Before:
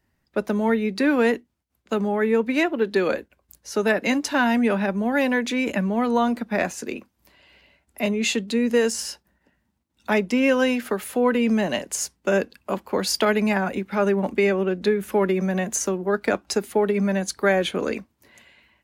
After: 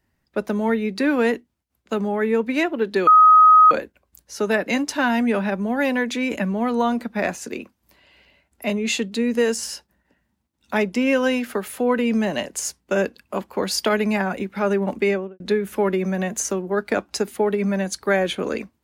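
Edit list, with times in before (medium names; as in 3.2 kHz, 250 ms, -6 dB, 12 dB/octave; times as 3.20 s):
3.07 s: add tone 1.26 kHz -7.5 dBFS 0.64 s
14.42–14.76 s: studio fade out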